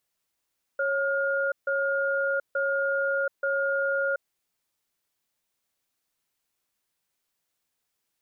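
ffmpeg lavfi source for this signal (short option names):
-f lavfi -i "aevalsrc='0.0501*(sin(2*PI*551*t)+sin(2*PI*1420*t))*clip(min(mod(t,0.88),0.73-mod(t,0.88))/0.005,0,1)':d=3.49:s=44100"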